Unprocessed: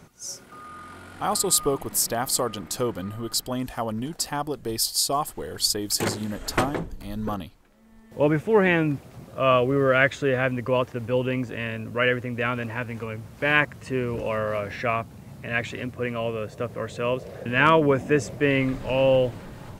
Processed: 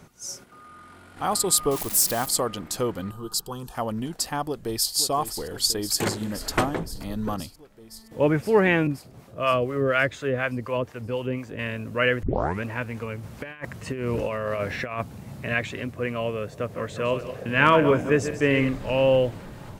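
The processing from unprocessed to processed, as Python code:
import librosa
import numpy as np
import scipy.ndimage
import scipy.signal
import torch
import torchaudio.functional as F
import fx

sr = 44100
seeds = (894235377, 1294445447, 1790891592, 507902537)

y = fx.crossing_spikes(x, sr, level_db=-21.5, at=(1.71, 2.26))
y = fx.fixed_phaser(y, sr, hz=410.0, stages=8, at=(3.11, 3.75))
y = fx.echo_throw(y, sr, start_s=4.44, length_s=0.51, ms=520, feedback_pct=80, wet_db=-10.5)
y = fx.band_squash(y, sr, depth_pct=40, at=(6.95, 7.4))
y = fx.harmonic_tremolo(y, sr, hz=4.1, depth_pct=70, crossover_hz=630.0, at=(8.87, 11.59))
y = fx.over_compress(y, sr, threshold_db=-28.0, ratio=-0.5, at=(13.23, 15.54))
y = fx.reverse_delay_fb(y, sr, ms=100, feedback_pct=44, wet_db=-10.0, at=(16.61, 18.69))
y = fx.edit(y, sr, fx.clip_gain(start_s=0.44, length_s=0.73, db=-5.5),
    fx.tape_start(start_s=12.23, length_s=0.4), tone=tone)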